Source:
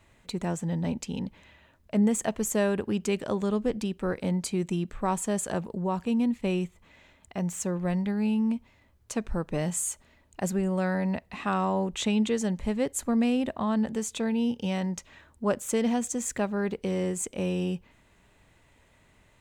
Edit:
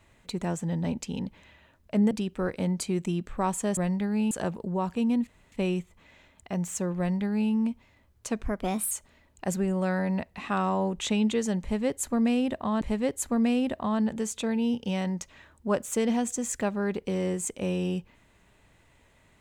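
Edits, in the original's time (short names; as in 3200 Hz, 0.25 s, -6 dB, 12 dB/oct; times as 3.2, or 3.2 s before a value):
2.11–3.75 cut
6.37 insert room tone 0.25 s
7.83–8.37 copy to 5.41
9.3–9.87 speed 123%
12.58–13.77 loop, 2 plays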